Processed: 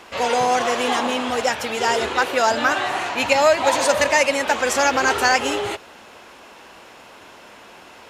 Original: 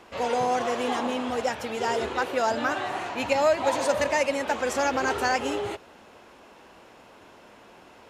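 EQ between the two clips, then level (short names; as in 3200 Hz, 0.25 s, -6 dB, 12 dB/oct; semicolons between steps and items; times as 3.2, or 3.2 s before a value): tilt shelf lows -4 dB, about 890 Hz; +7.0 dB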